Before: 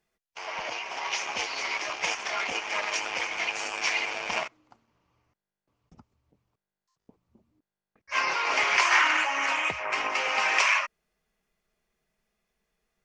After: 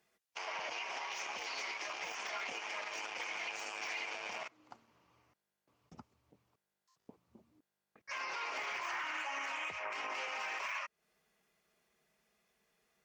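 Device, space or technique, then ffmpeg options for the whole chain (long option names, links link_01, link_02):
podcast mastering chain: -af "highpass=68,lowshelf=frequency=180:gain=-7.5,deesser=0.85,acompressor=threshold=-40dB:ratio=4,alimiter=level_in=10dB:limit=-24dB:level=0:latency=1:release=46,volume=-10dB,volume=3.5dB" -ar 48000 -c:a libmp3lame -b:a 96k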